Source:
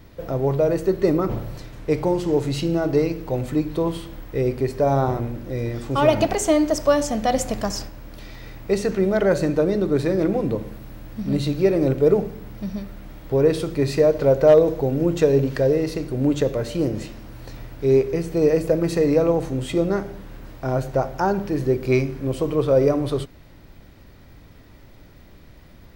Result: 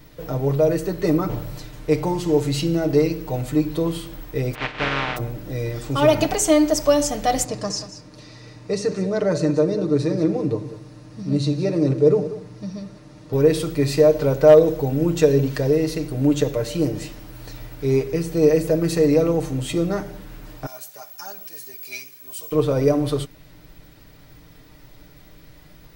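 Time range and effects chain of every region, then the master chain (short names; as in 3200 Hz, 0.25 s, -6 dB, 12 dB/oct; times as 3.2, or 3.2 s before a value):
4.53–5.16 spectral contrast lowered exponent 0.16 + LPF 2700 Hz 24 dB/oct + upward compressor, threshold -27 dBFS
7.44–13.33 speaker cabinet 100–8300 Hz, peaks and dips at 110 Hz +5 dB, 750 Hz -6 dB, 1500 Hz -7 dB, 2200 Hz -6 dB, 3200 Hz -9 dB, 7600 Hz -5 dB + echo 0.187 s -13.5 dB
20.66–22.52 differentiator + comb 4.9 ms, depth 72%
whole clip: high shelf 3500 Hz +7 dB; comb 6.6 ms; gain -2 dB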